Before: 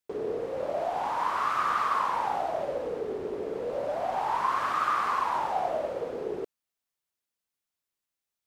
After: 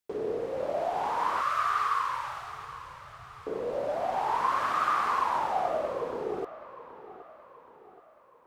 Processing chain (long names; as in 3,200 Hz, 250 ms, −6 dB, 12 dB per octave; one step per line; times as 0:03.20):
0:01.41–0:03.47: elliptic band-stop filter 130–1,100 Hz
delay with a low-pass on its return 775 ms, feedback 47%, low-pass 3,000 Hz, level −16 dB